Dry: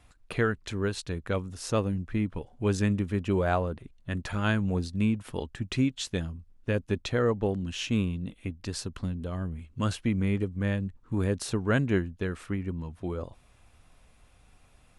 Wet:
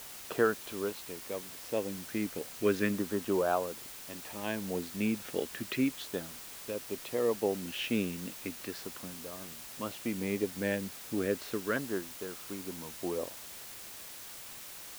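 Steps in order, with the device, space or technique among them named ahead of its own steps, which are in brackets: shortwave radio (band-pass 330–2600 Hz; tremolo 0.37 Hz, depth 67%; LFO notch saw down 0.34 Hz 770–2500 Hz; white noise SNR 11 dB); trim +4 dB

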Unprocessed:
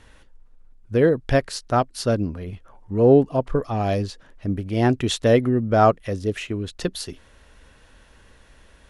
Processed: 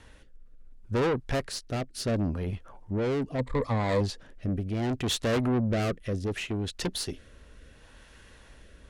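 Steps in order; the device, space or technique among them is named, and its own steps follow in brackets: overdriven rotary cabinet (valve stage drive 25 dB, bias 0.3; rotary cabinet horn 0.7 Hz); 3.38–4.01 s: rippled EQ curve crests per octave 1, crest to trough 12 dB; trim +2.5 dB

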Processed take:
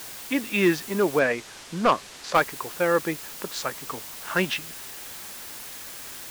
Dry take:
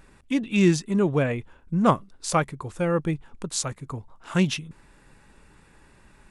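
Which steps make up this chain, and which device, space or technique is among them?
drive-through speaker (band-pass 370–3500 Hz; peaking EQ 1.7 kHz +6 dB 0.41 oct; hard clipper -16 dBFS, distortion -13 dB; white noise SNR 12 dB); 1.19–2.35 s: low-pass 7.1 kHz 12 dB/octave; trim +4 dB

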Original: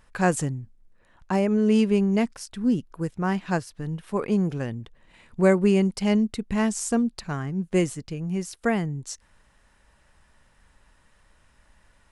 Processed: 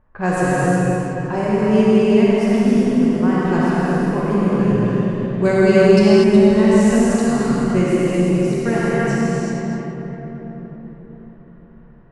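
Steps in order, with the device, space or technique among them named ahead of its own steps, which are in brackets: swimming-pool hall (reverberation RT60 4.5 s, pre-delay 36 ms, DRR -3 dB; treble shelf 4.5 kHz -7.5 dB); gated-style reverb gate 420 ms flat, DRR -4.5 dB; 5.45–6.24 s: peaking EQ 4.5 kHz +12 dB 0.82 oct; level-controlled noise filter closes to 1.1 kHz, open at -14 dBFS; trim -1 dB

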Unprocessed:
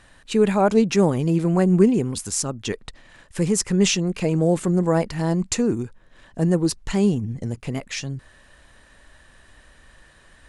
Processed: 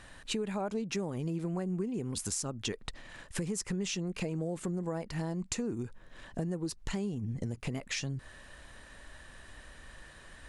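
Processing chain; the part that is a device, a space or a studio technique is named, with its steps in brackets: serial compression, peaks first (compression 4:1, threshold -29 dBFS, peak gain reduction 16 dB; compression 2:1, threshold -34 dBFS, peak gain reduction 5.5 dB)

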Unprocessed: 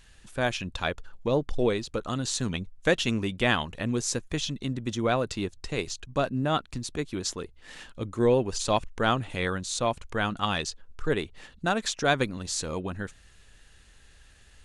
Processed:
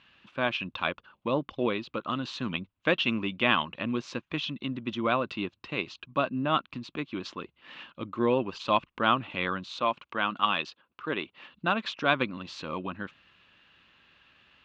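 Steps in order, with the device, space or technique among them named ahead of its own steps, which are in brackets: kitchen radio (cabinet simulation 200–3500 Hz, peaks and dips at 440 Hz -9 dB, 740 Hz -5 dB, 1.1 kHz +6 dB, 1.8 kHz -5 dB, 2.7 kHz +5 dB); 9.80–11.53 s: high-pass 240 Hz 6 dB/octave; trim +1 dB

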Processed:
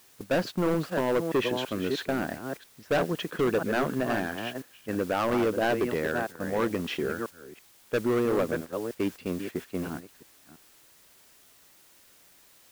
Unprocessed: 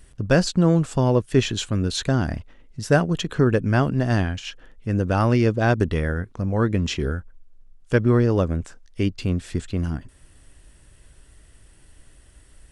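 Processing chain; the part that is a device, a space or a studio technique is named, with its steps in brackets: chunks repeated in reverse 330 ms, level -9 dB; aircraft radio (band-pass 310–2400 Hz; hard clipper -20.5 dBFS, distortion -8 dB; white noise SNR 20 dB; gate -35 dBFS, range -8 dB)

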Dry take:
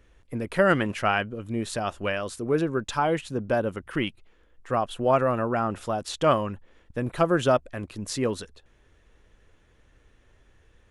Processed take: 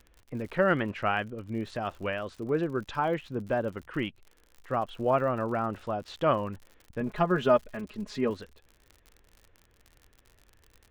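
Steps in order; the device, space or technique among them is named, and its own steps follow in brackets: lo-fi chain (low-pass 3.2 kHz 12 dB/octave; wow and flutter; crackle 66 per s -37 dBFS); 7.00–8.30 s: comb 4.8 ms, depth 73%; trim -4 dB

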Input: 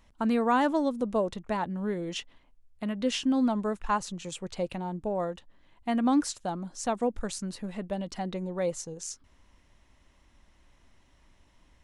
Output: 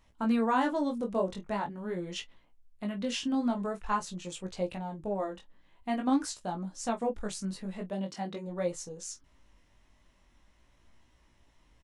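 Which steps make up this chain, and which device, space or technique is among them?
double-tracked vocal (doubling 26 ms -12.5 dB; chorus 0.45 Hz, delay 16.5 ms, depth 4.9 ms); 7.89–8.46 s: high-pass 180 Hz -> 73 Hz

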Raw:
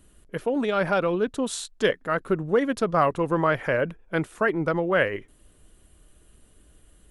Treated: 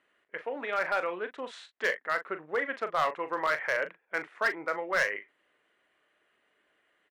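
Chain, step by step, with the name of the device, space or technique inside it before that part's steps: megaphone (band-pass 620–2500 Hz; peaking EQ 2 kHz +9.5 dB 0.58 oct; hard clipper -16.5 dBFS, distortion -14 dB; doubling 39 ms -10.5 dB); trim -4.5 dB

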